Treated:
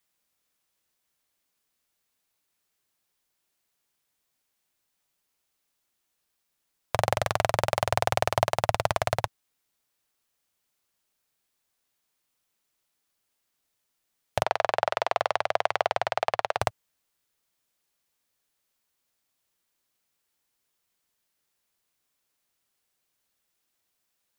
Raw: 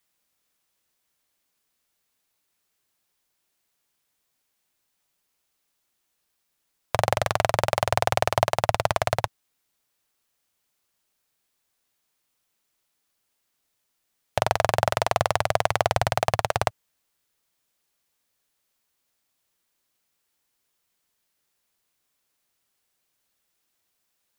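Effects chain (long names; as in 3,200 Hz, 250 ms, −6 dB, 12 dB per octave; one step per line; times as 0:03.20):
0:14.43–0:16.61: three-way crossover with the lows and the highs turned down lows −18 dB, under 320 Hz, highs −15 dB, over 4,800 Hz
level −2.5 dB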